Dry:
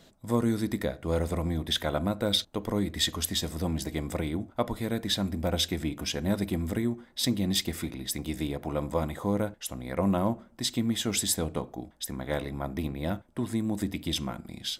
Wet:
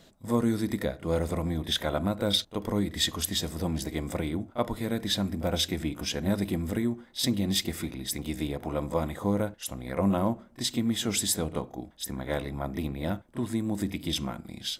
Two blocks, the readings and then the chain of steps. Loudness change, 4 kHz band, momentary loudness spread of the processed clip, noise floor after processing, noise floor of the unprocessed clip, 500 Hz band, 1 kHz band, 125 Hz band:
+0.5 dB, 0.0 dB, 7 LU, -56 dBFS, -58 dBFS, +0.5 dB, 0.0 dB, 0.0 dB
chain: pre-echo 30 ms -13.5 dB

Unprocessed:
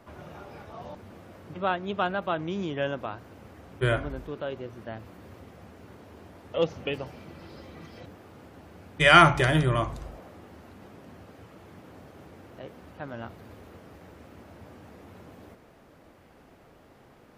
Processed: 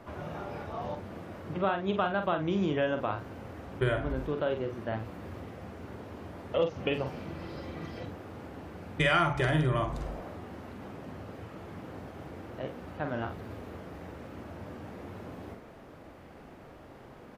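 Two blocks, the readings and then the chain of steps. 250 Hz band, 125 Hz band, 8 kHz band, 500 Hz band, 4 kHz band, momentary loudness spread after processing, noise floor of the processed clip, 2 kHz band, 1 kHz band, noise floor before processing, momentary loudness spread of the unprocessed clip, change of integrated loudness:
-0.5 dB, -2.5 dB, -9.5 dB, -1.5 dB, -8.0 dB, 16 LU, -50 dBFS, -7.0 dB, -6.5 dB, -56 dBFS, 25 LU, -8.5 dB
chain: treble shelf 3.8 kHz -7 dB; compression 5:1, threshold -30 dBFS, peak gain reduction 17 dB; doubling 46 ms -7 dB; trim +4.5 dB

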